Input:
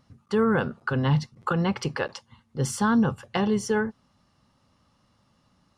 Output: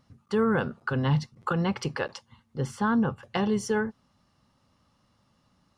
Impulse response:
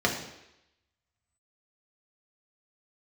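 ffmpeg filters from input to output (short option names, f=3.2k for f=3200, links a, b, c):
-filter_complex "[0:a]asettb=1/sr,asplit=3[a][b][c];[a]atrim=end=2.604[d];[b]atrim=start=2.6:end=3.23,asetpts=PTS-STARTPTS,afade=t=in:d=0.004:c=qsin,afade=t=out:st=0.626:d=0.004:c=qsin,bass=f=250:g=-2,treble=f=4k:g=-13[e];[c]atrim=start=3.226[f];[d][e]acrossfade=d=0.004:c1=hsin:c2=qsin[g];[g][f]acrossfade=d=0.004:c1=qsin:c2=hsin,volume=-2dB"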